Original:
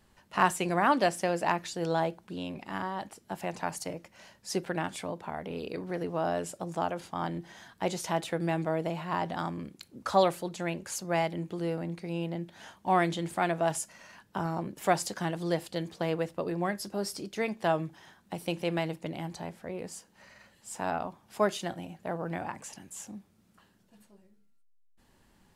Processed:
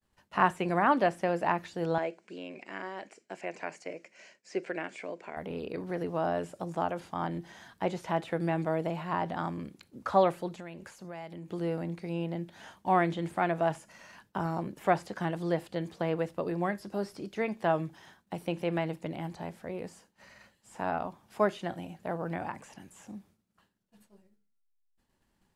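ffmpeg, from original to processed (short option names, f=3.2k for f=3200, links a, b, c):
-filter_complex "[0:a]asettb=1/sr,asplit=3[a][b][c];[a]atrim=end=1.984[d];[b]atrim=start=1.98:end=5.37,asetpts=PTS-STARTPTS,afade=t=in:d=0.004:c=qsin,afade=t=out:st=3.386:d=0.004:c=qsin,highpass=360,equalizer=f=390:t=q:w=4:g=3,equalizer=f=860:t=q:w=4:g=-10,equalizer=f=1.2k:t=q:w=4:g=-7,equalizer=f=2.3k:t=q:w=4:g=7,equalizer=f=3.6k:t=q:w=4:g=-8,equalizer=f=7.3k:t=q:w=4:g=4,lowpass=f=7.6k:w=0.5412,lowpass=f=7.6k:w=1.3066[e];[c]atrim=start=5.366[f];[d][e]acrossfade=d=0.004:c1=hsin:c2=qsin[g];[g][f]acrossfade=d=0.004:c1=qsin:c2=hsin,asettb=1/sr,asplit=3[h][i][j];[h]atrim=end=10.554[k];[i]atrim=start=10.55:end=11.52,asetpts=PTS-STARTPTS,afade=t=in:d=0.004:c=qsin,afade=t=out:st=0.966:d=0.004:c=qsin,acompressor=threshold=-40dB:ratio=4:attack=3.2:release=140:knee=1:detection=peak[l];[j]atrim=start=11.516[m];[k][l]acrossfade=d=0.004:c1=hsin:c2=qsin[n];[n][m]acrossfade=d=0.004:c1=qsin:c2=hsin,acrossover=split=2800[o][p];[p]acompressor=threshold=-55dB:ratio=4:attack=1:release=60[q];[o][q]amix=inputs=2:normalize=0,agate=range=-33dB:threshold=-55dB:ratio=3:detection=peak"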